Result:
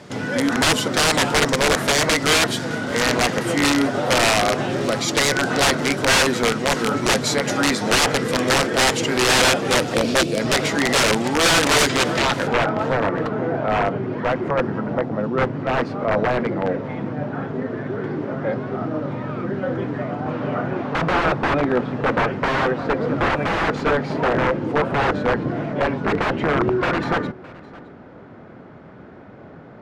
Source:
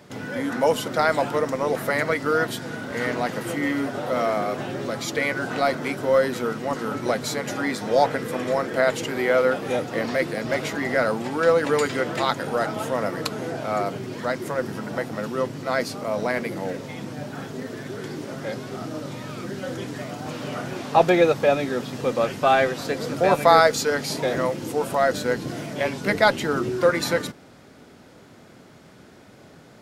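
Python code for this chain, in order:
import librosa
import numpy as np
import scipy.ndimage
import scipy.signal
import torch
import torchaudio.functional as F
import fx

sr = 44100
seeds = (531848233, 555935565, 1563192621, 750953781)

y = fx.spec_box(x, sr, start_s=9.94, length_s=0.46, low_hz=700.0, high_hz=2200.0, gain_db=-14)
y = fx.dynamic_eq(y, sr, hz=1800.0, q=0.78, threshold_db=-43.0, ratio=4.0, max_db=-7, at=(14.8, 15.37))
y = (np.mod(10.0 ** (17.5 / 20.0) * y + 1.0, 2.0) - 1.0) / 10.0 ** (17.5 / 20.0)
y = fx.filter_sweep_lowpass(y, sr, from_hz=8400.0, to_hz=1500.0, start_s=11.92, end_s=12.76, q=0.83)
y = y + 10.0 ** (-22.0 / 20.0) * np.pad(y, (int(613 * sr / 1000.0), 0))[:len(y)]
y = y * librosa.db_to_amplitude(7.0)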